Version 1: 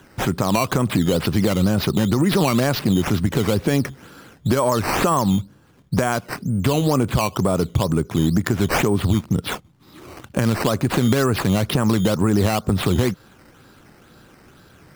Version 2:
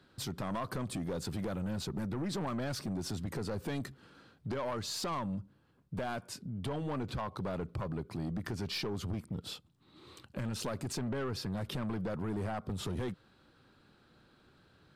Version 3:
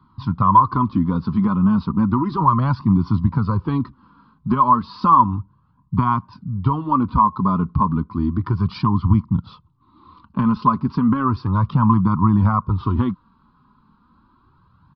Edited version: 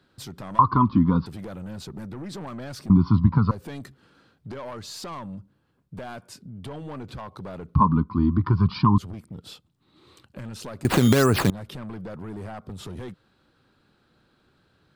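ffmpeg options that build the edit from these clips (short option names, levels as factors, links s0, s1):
-filter_complex "[2:a]asplit=3[s0][s1][s2];[1:a]asplit=5[s3][s4][s5][s6][s7];[s3]atrim=end=0.592[s8];[s0]atrim=start=0.588:end=1.262[s9];[s4]atrim=start=1.258:end=2.902[s10];[s1]atrim=start=2.898:end=3.512[s11];[s5]atrim=start=3.508:end=7.752[s12];[s2]atrim=start=7.748:end=8.982[s13];[s6]atrim=start=8.978:end=10.852[s14];[0:a]atrim=start=10.848:end=11.502[s15];[s7]atrim=start=11.498[s16];[s8][s9]acrossfade=d=0.004:c1=hsin:c2=hsin[s17];[s17][s10]acrossfade=d=0.004:c1=hsin:c2=hsin[s18];[s18][s11]acrossfade=d=0.004:c1=hsin:c2=hsin[s19];[s19][s12]acrossfade=d=0.004:c1=hsin:c2=hsin[s20];[s20][s13]acrossfade=d=0.004:c1=hsin:c2=hsin[s21];[s21][s14]acrossfade=d=0.004:c1=hsin:c2=hsin[s22];[s22][s15]acrossfade=d=0.004:c1=hsin:c2=hsin[s23];[s23][s16]acrossfade=d=0.004:c1=hsin:c2=hsin"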